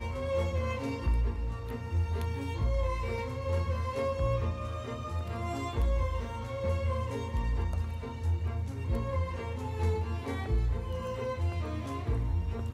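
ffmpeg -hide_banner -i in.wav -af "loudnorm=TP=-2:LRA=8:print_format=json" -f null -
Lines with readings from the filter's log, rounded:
"input_i" : "-33.4",
"input_tp" : "-18.1",
"input_lra" : "0.8",
"input_thresh" : "-43.4",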